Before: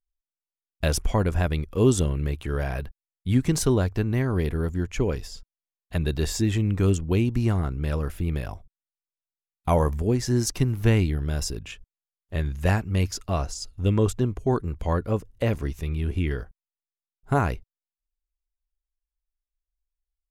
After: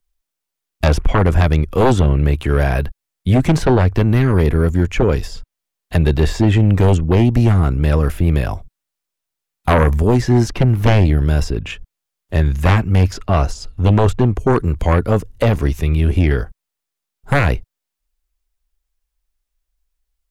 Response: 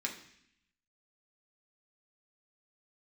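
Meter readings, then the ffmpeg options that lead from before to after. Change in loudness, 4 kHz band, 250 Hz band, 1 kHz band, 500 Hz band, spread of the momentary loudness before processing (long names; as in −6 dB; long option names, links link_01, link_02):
+9.5 dB, +6.0 dB, +8.5 dB, +10.5 dB, +9.0 dB, 10 LU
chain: -filter_complex "[0:a]acrossover=split=130|1400|3300[link_01][link_02][link_03][link_04];[link_04]acompressor=threshold=-51dB:ratio=5[link_05];[link_01][link_02][link_03][link_05]amix=inputs=4:normalize=0,aeval=exprs='0.447*sin(PI/2*2.82*val(0)/0.447)':channel_layout=same"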